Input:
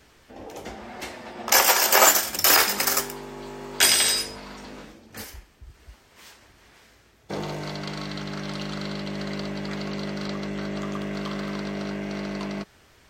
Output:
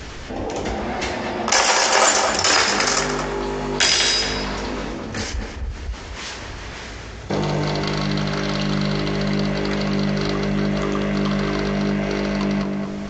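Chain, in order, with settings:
low-shelf EQ 120 Hz +8 dB
on a send: tape delay 220 ms, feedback 46%, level −6 dB, low-pass 1,500 Hz
on the sum: downsampling to 16,000 Hz
envelope flattener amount 50%

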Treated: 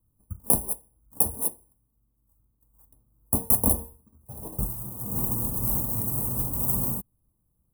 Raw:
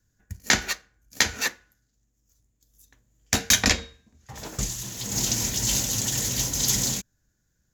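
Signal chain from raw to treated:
samples in bit-reversed order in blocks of 32 samples
elliptic band-stop filter 1,000–9,600 Hz, stop band 60 dB
level +1 dB

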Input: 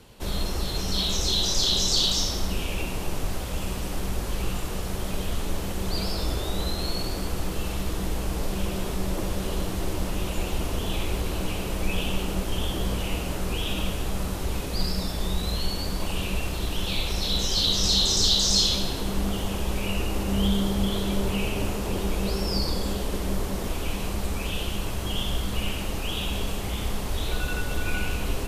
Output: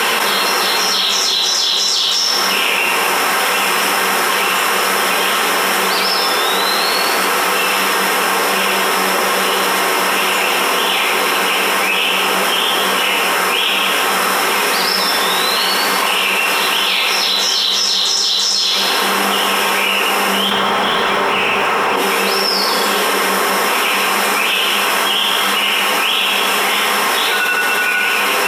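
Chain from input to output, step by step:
high-pass filter 750 Hz 12 dB per octave
0:20.51–0:21.96: mid-hump overdrive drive 35 dB, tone 1,200 Hz, clips at −9.5 dBFS
convolution reverb RT60 0.25 s, pre-delay 3 ms, DRR 6 dB
envelope flattener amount 100%
level +1 dB

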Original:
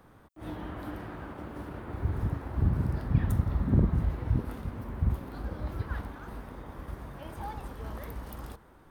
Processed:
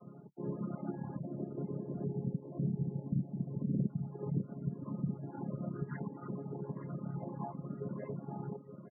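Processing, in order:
channel vocoder with a chord as carrier major triad, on C#3
0:01.18–0:03.90: Chebyshev low-pass filter 650 Hz, order 2
reverb reduction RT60 1.2 s
gate on every frequency bin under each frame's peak −30 dB strong
dynamic equaliser 410 Hz, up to +4 dB, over −58 dBFS, Q 6.9
downward compressor 3 to 1, threshold −46 dBFS, peak gain reduction 18.5 dB
spectral peaks only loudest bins 32
single-tap delay 874 ms −10.5 dB
phaser whose notches keep moving one way rising 1.6 Hz
level +10.5 dB

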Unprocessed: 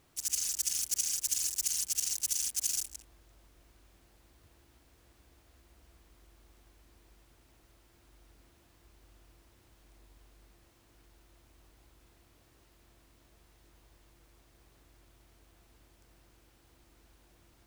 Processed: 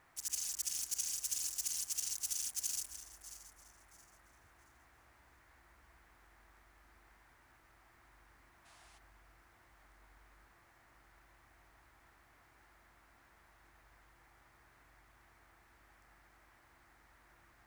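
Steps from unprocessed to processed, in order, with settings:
feedback delay that plays each chunk backwards 337 ms, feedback 51%, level −13 dB
gain on a spectral selection 0:08.65–0:08.98, 620–11,000 Hz +12 dB
noise in a band 650–2,100 Hz −62 dBFS
level −6.5 dB

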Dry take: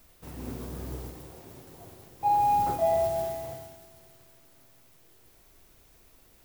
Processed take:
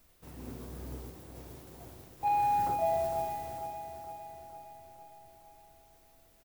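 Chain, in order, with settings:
0:01.35–0:02.68: leveller curve on the samples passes 1
repeating echo 458 ms, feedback 60%, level −9 dB
level −6 dB

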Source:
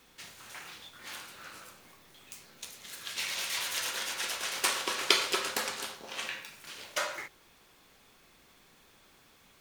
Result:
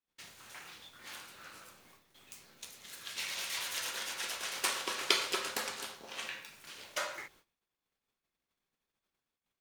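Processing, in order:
noise gate −57 dBFS, range −32 dB
level −4 dB

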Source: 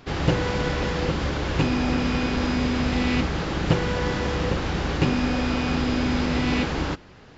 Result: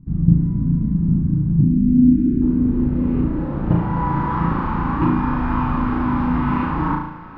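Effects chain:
flat-topped bell 550 Hz −14 dB 1.2 octaves
on a send: feedback echo with a high-pass in the loop 438 ms, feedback 75%, level −22 dB
on the sum: flanger 0.36 Hz, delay 0.9 ms, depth 5.8 ms, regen +64%
0:01.61–0:02.42: Butterworth band-reject 830 Hz, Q 0.69
flutter between parallel walls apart 6.1 metres, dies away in 0.63 s
in parallel at −2 dB: speech leveller 0.5 s
on the sum: low-pass filter sweep 190 Hz → 970 Hz, 0:01.60–0:04.35
level +2.5 dB

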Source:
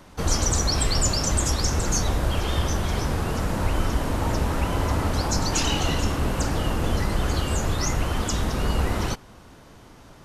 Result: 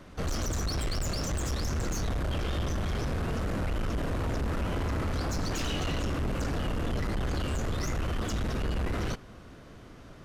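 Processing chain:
parametric band 880 Hz −8.5 dB 0.39 octaves
soft clipping −26.5 dBFS, distortion −8 dB
high-shelf EQ 4,700 Hz −10 dB

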